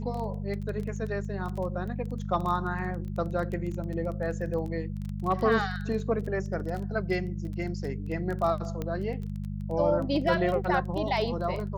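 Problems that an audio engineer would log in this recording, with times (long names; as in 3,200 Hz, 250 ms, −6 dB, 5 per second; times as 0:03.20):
surface crackle 17 per second
mains hum 50 Hz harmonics 4 −34 dBFS
0:08.82: click −20 dBFS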